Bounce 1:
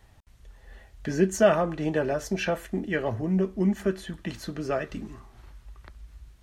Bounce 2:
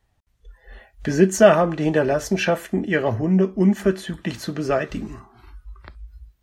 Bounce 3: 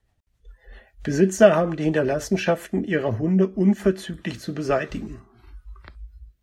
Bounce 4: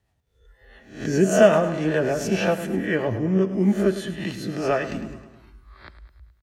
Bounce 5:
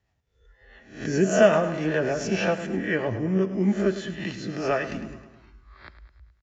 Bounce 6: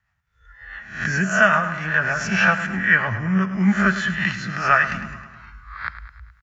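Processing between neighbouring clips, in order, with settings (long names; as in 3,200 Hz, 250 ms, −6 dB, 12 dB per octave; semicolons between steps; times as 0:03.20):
noise reduction from a noise print of the clip's start 18 dB; level +7 dB
rotating-speaker cabinet horn 7.5 Hz, later 1 Hz, at 0:03.65
peak hold with a rise ahead of every peak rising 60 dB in 0.47 s; high-pass filter 60 Hz; on a send: repeating echo 105 ms, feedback 55%, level −13 dB; on the sum: level −2 dB
Chebyshev low-pass with heavy ripple 7,300 Hz, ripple 3 dB
drawn EQ curve 190 Hz 0 dB, 300 Hz −16 dB, 450 Hz −15 dB, 1,400 Hz +13 dB, 3,400 Hz −1 dB; automatic gain control gain up to 10 dB; level −1 dB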